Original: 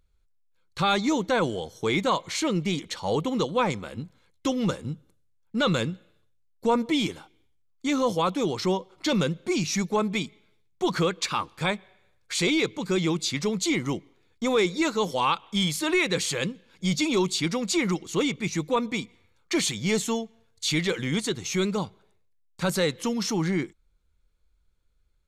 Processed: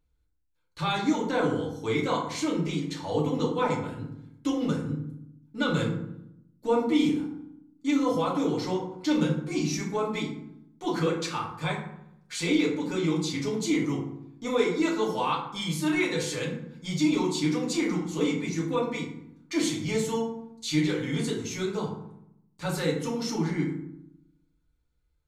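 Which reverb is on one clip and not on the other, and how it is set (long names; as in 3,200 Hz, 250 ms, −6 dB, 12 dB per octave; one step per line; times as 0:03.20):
feedback delay network reverb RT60 0.75 s, low-frequency decay 1.5×, high-frequency decay 0.5×, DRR −4.5 dB
level −9.5 dB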